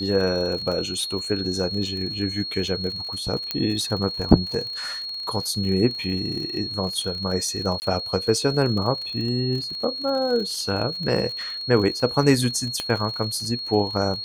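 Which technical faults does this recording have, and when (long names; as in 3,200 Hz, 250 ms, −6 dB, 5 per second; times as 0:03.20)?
surface crackle 48 per second −30 dBFS
whistle 4,300 Hz −29 dBFS
0:03.51: click −9 dBFS
0:07.80–0:07.82: drop-out 19 ms
0:12.80: click −13 dBFS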